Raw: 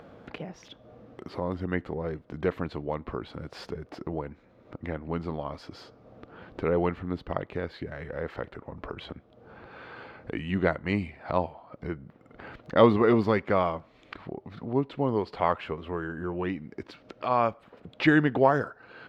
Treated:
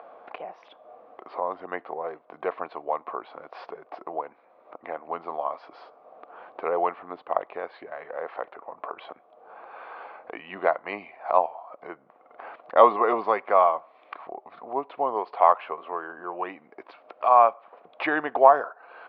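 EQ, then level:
high-frequency loss of the air 69 metres
loudspeaker in its box 450–4,700 Hz, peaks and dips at 720 Hz +7 dB, 1,100 Hz +8 dB, 2,400 Hz +5 dB
parametric band 750 Hz +10.5 dB 2.1 octaves
−6.5 dB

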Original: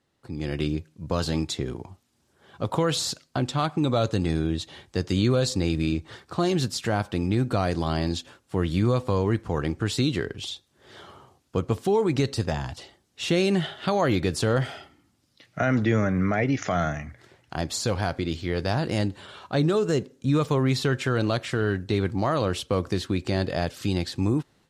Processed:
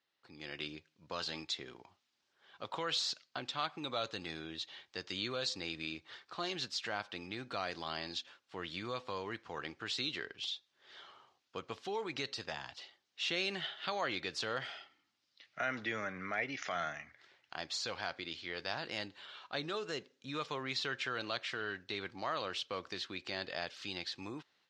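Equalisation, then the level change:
resonant band-pass 7,200 Hz, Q 0.59
high-frequency loss of the air 220 metres
+4.0 dB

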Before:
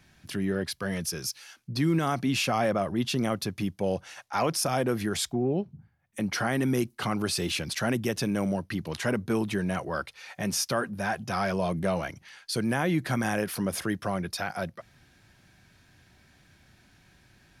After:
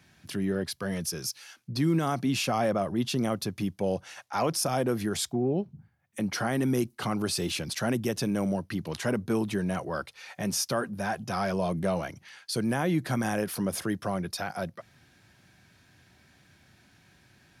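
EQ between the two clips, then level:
dynamic equaliser 2,100 Hz, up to −4 dB, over −43 dBFS, Q 0.88
high-pass filter 75 Hz
0.0 dB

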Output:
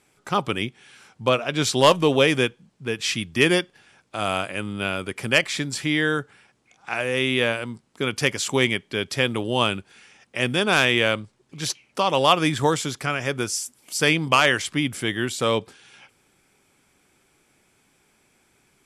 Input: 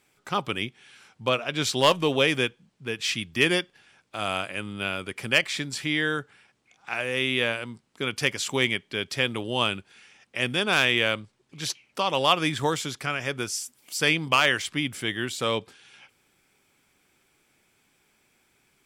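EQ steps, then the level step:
elliptic low-pass filter 12,000 Hz, stop band 60 dB
parametric band 3,200 Hz −4.5 dB 2.3 octaves
+6.5 dB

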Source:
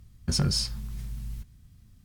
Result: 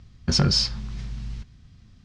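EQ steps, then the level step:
low-pass filter 5,700 Hz 24 dB per octave
low-shelf EQ 170 Hz −6.5 dB
+8.5 dB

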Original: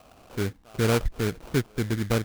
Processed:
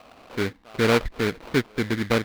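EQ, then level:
graphic EQ with 10 bands 250 Hz +7 dB, 500 Hz +6 dB, 1,000 Hz +7 dB, 2,000 Hz +10 dB, 4,000 Hz +8 dB
−4.5 dB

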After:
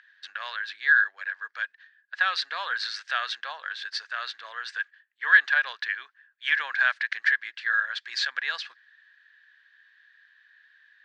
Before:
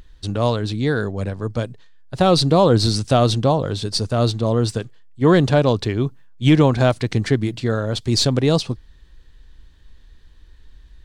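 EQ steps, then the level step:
four-pole ladder high-pass 1,600 Hz, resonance 85%
low-pass filter 4,700 Hz 12 dB per octave
high-frequency loss of the air 88 metres
+8.5 dB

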